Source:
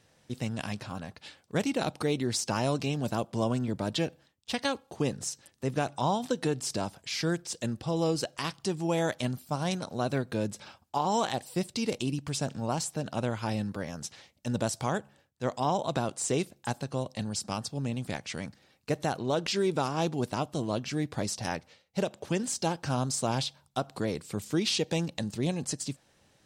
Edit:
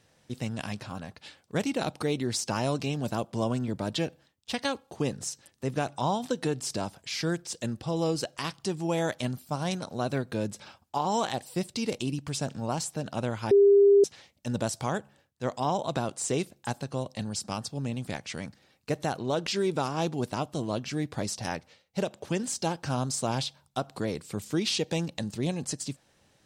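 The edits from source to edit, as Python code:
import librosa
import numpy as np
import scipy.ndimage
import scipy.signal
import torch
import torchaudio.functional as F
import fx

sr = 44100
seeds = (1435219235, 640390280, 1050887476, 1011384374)

y = fx.edit(x, sr, fx.bleep(start_s=13.51, length_s=0.53, hz=401.0, db=-14.5), tone=tone)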